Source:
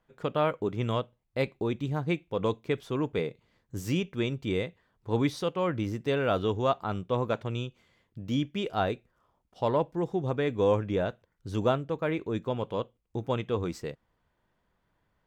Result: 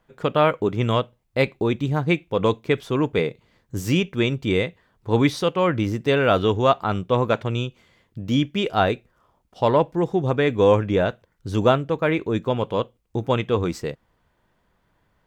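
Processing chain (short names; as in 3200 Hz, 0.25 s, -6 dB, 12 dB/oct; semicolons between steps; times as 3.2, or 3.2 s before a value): dynamic EQ 2200 Hz, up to +3 dB, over -40 dBFS, Q 0.82; gain +8 dB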